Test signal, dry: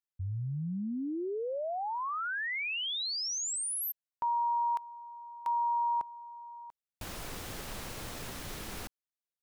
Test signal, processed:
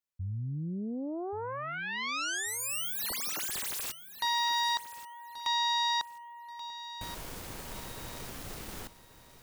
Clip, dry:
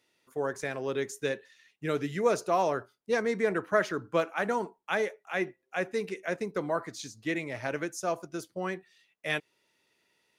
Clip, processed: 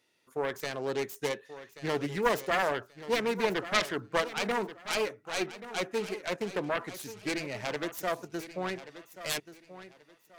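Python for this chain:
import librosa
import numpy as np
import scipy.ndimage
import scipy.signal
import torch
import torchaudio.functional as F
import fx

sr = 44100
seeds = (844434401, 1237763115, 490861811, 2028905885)

y = fx.self_delay(x, sr, depth_ms=0.67)
y = fx.echo_feedback(y, sr, ms=1132, feedback_pct=27, wet_db=-14.0)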